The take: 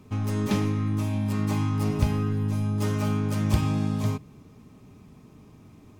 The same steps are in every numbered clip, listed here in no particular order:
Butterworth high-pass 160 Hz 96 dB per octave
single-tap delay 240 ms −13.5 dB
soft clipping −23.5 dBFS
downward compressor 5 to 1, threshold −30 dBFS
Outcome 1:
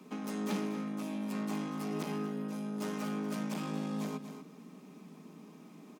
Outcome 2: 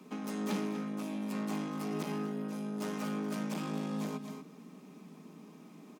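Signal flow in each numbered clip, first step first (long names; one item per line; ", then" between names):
soft clipping, then single-tap delay, then downward compressor, then Butterworth high-pass
single-tap delay, then soft clipping, then downward compressor, then Butterworth high-pass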